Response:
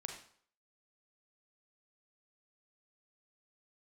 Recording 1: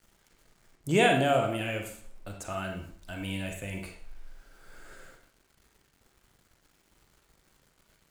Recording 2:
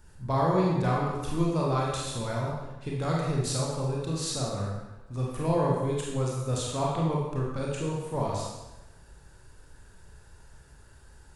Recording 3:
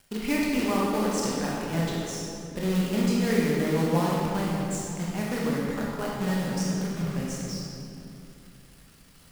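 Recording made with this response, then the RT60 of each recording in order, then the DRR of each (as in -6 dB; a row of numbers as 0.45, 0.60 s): 1; 0.55, 1.0, 2.8 s; 2.0, -4.0, -5.0 dB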